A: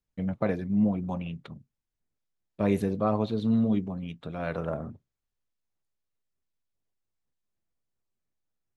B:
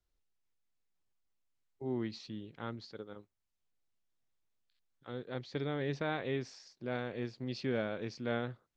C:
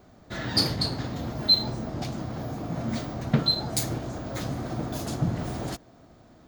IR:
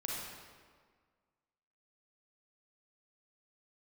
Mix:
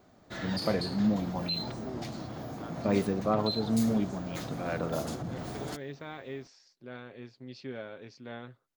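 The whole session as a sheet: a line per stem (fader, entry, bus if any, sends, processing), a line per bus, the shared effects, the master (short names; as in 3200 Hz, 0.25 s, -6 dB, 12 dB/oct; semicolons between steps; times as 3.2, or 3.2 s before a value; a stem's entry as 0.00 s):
-1.0 dB, 0.25 s, no send, dry
-6.0 dB, 0.00 s, no send, comb 7.4 ms, depth 36%
-4.5 dB, 0.00 s, no send, limiter -21.5 dBFS, peak gain reduction 11.5 dB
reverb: off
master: low shelf 110 Hz -8.5 dB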